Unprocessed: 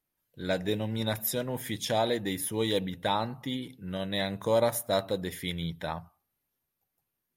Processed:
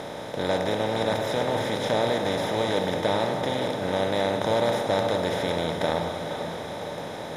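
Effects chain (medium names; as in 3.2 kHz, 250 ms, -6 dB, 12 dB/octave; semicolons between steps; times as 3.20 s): spectral levelling over time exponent 0.2; distance through air 100 m; echo that smears into a reverb 478 ms, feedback 47%, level -7.5 dB; trim -4 dB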